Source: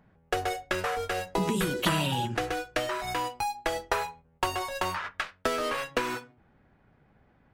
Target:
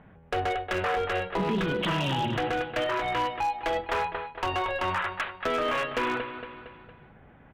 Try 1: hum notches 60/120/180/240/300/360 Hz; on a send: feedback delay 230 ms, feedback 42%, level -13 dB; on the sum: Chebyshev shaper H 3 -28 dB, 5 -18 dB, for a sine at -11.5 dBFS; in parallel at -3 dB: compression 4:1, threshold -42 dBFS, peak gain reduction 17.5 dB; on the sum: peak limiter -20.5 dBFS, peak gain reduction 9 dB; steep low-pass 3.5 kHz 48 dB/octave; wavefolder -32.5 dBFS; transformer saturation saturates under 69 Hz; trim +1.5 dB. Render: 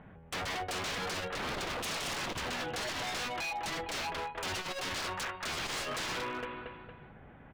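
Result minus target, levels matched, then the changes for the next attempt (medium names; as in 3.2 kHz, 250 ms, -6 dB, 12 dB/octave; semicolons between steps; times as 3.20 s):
wavefolder: distortion +35 dB; compression: peak gain reduction -5 dB
change: compression 4:1, threshold -48.5 dBFS, peak gain reduction 22.5 dB; change: wavefolder -22.5 dBFS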